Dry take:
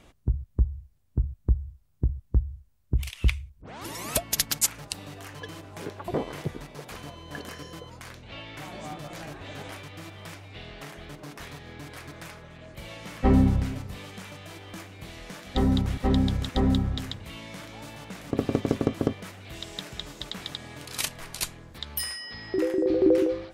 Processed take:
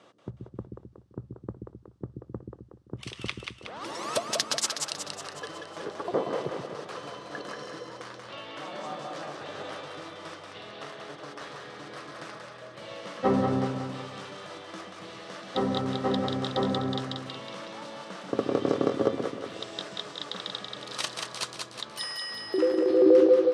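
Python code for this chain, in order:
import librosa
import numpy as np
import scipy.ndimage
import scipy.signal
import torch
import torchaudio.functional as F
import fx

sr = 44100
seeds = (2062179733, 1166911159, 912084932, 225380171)

y = fx.cabinet(x, sr, low_hz=150.0, low_slope=24, high_hz=7800.0, hz=(160.0, 250.0, 520.0, 1200.0, 2300.0, 7000.0), db=(-8, -7, 5, 6, -6, -6))
y = fx.echo_split(y, sr, split_hz=390.0, low_ms=130, high_ms=184, feedback_pct=52, wet_db=-4)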